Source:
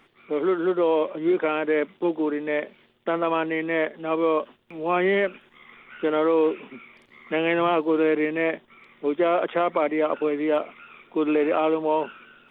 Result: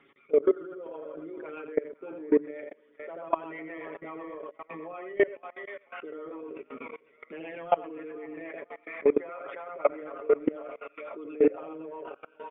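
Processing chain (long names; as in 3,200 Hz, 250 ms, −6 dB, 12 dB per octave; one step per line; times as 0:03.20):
spectral envelope exaggerated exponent 1.5
mains-hum notches 60/120/180/240/300 Hz
on a send: repeating echo 82 ms, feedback 24%, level −5 dB
on the sum: gain on a spectral selection 0:08.88–0:09.73, 800–2,600 Hz +11 dB
high-pass filter 150 Hz 6 dB per octave
delay with a band-pass on its return 498 ms, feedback 37%, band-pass 1,300 Hz, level −10.5 dB
brickwall limiter −17 dBFS, peak gain reduction 9.5 dB
rotating-speaker cabinet horn 8 Hz
transient designer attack +1 dB, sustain −12 dB
comb filter 7.2 ms, depth 86%
output level in coarse steps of 22 dB
downsampling to 8,000 Hz
level +4 dB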